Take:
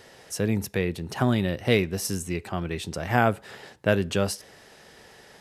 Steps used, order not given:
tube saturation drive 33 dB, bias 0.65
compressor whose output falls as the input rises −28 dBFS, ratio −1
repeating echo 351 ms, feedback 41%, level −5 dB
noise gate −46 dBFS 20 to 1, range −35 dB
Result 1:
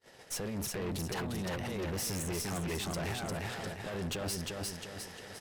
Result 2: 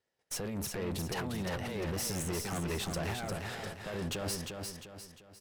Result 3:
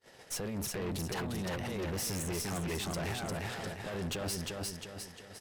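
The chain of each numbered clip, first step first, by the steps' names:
compressor whose output falls as the input rises, then repeating echo, then noise gate, then tube saturation
compressor whose output falls as the input rises, then tube saturation, then noise gate, then repeating echo
compressor whose output falls as the input rises, then noise gate, then repeating echo, then tube saturation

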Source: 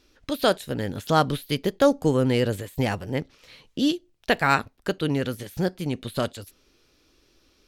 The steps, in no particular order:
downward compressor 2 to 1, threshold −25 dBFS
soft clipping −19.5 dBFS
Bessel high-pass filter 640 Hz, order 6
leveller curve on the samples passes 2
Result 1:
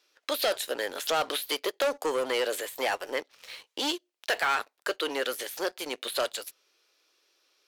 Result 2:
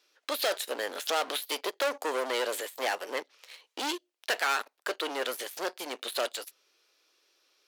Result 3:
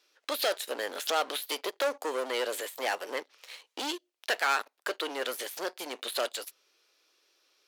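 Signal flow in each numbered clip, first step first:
soft clipping, then Bessel high-pass filter, then leveller curve on the samples, then downward compressor
leveller curve on the samples, then soft clipping, then Bessel high-pass filter, then downward compressor
downward compressor, then leveller curve on the samples, then soft clipping, then Bessel high-pass filter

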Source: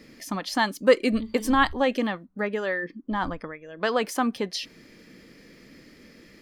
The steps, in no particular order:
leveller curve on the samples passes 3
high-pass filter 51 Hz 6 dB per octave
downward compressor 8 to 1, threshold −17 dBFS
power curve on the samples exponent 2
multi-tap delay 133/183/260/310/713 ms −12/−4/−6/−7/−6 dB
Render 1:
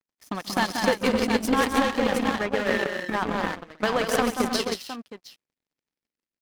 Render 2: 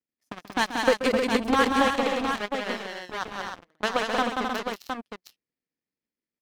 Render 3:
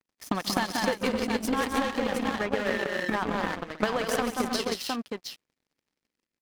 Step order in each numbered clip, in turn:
high-pass filter, then leveller curve on the samples, then multi-tap delay, then power curve on the samples, then downward compressor
power curve on the samples, then high-pass filter, then leveller curve on the samples, then downward compressor, then multi-tap delay
high-pass filter, then leveller curve on the samples, then multi-tap delay, then downward compressor, then power curve on the samples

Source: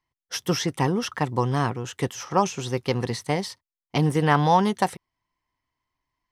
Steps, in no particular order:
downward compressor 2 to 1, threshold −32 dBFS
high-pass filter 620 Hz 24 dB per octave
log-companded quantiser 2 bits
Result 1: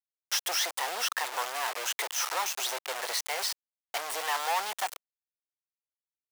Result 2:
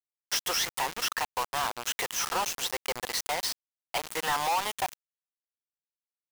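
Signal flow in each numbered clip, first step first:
downward compressor, then log-companded quantiser, then high-pass filter
downward compressor, then high-pass filter, then log-companded quantiser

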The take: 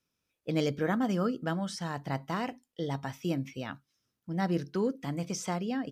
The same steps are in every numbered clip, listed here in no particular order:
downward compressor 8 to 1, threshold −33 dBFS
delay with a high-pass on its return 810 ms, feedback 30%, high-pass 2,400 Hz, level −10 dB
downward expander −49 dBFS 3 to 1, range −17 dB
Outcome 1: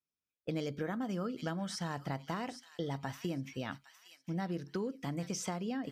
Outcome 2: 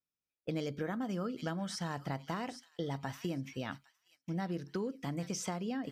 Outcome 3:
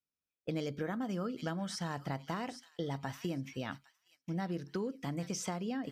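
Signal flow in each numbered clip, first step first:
downward expander, then delay with a high-pass on its return, then downward compressor
delay with a high-pass on its return, then downward compressor, then downward expander
delay with a high-pass on its return, then downward expander, then downward compressor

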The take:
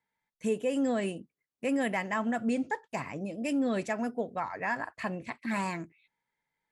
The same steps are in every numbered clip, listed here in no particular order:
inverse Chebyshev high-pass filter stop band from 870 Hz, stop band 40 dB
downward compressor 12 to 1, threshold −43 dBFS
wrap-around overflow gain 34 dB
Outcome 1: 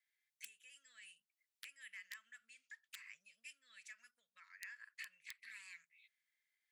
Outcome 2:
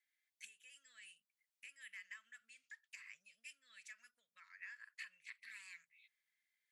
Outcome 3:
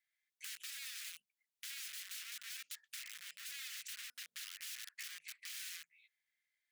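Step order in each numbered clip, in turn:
downward compressor, then wrap-around overflow, then inverse Chebyshev high-pass filter
downward compressor, then inverse Chebyshev high-pass filter, then wrap-around overflow
wrap-around overflow, then downward compressor, then inverse Chebyshev high-pass filter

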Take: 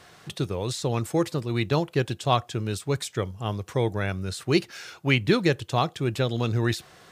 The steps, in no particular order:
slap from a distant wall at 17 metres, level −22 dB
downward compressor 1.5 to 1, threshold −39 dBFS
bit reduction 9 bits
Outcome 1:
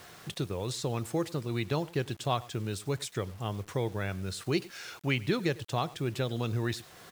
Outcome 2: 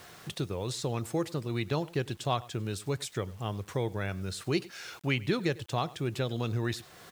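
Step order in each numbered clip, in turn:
slap from a distant wall, then downward compressor, then bit reduction
slap from a distant wall, then bit reduction, then downward compressor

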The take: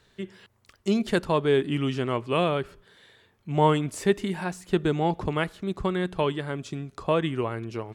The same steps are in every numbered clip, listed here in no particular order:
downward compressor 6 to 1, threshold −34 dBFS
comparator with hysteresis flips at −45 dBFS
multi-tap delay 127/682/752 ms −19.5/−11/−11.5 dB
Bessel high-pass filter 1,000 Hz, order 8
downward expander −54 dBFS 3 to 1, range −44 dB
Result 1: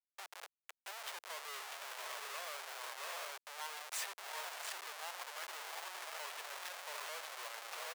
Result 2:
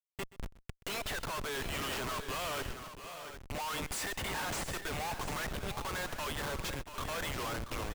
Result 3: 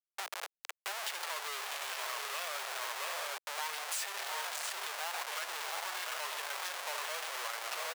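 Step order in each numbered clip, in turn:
downward expander, then multi-tap delay, then downward compressor, then comparator with hysteresis, then Bessel high-pass filter
Bessel high-pass filter, then downward expander, then comparator with hysteresis, then downward compressor, then multi-tap delay
multi-tap delay, then comparator with hysteresis, then downward expander, then Bessel high-pass filter, then downward compressor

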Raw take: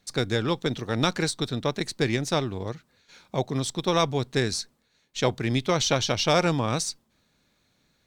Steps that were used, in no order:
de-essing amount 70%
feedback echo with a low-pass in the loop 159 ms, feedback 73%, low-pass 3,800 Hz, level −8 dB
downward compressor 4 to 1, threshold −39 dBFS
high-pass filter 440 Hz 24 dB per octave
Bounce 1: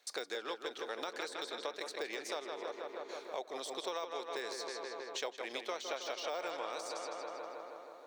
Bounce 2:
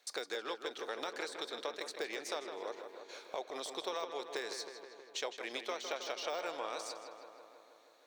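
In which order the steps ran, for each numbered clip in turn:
feedback echo with a low-pass in the loop, then de-essing, then high-pass filter, then downward compressor
high-pass filter, then de-essing, then downward compressor, then feedback echo with a low-pass in the loop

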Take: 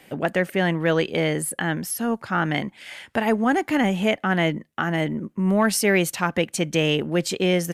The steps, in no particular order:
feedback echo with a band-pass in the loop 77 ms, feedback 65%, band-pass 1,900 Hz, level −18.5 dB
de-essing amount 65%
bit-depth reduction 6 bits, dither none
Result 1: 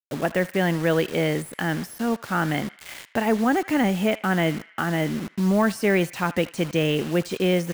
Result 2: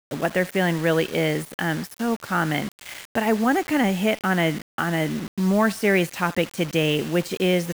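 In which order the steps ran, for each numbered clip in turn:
bit-depth reduction, then feedback echo with a band-pass in the loop, then de-essing
feedback echo with a band-pass in the loop, then de-essing, then bit-depth reduction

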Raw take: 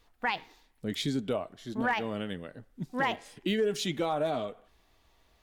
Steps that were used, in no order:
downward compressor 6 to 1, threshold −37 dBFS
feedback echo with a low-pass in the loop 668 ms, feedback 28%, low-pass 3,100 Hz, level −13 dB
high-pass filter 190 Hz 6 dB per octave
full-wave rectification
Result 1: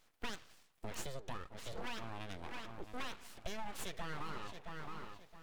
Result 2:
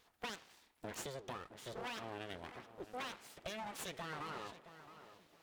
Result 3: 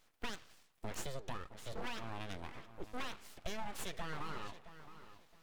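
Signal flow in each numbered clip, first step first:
feedback echo with a low-pass in the loop, then downward compressor, then high-pass filter, then full-wave rectification
downward compressor, then feedback echo with a low-pass in the loop, then full-wave rectification, then high-pass filter
high-pass filter, then downward compressor, then feedback echo with a low-pass in the loop, then full-wave rectification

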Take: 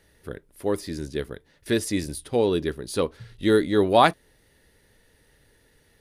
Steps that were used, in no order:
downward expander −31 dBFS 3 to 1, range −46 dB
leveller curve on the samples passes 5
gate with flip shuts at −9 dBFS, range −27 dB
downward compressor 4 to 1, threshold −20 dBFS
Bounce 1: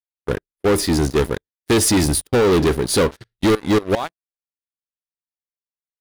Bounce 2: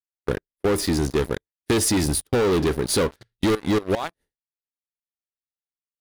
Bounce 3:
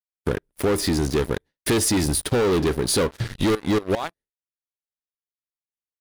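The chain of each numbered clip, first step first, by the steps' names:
gate with flip, then downward expander, then downward compressor, then leveller curve on the samples
downward expander, then gate with flip, then leveller curve on the samples, then downward compressor
gate with flip, then leveller curve on the samples, then downward expander, then downward compressor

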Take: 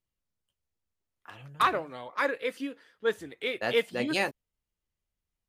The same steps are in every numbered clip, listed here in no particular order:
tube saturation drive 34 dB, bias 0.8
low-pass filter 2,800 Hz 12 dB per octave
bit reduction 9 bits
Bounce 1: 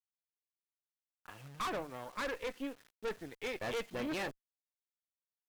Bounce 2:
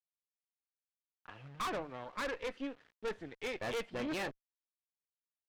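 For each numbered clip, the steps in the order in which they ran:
low-pass filter, then bit reduction, then tube saturation
bit reduction, then low-pass filter, then tube saturation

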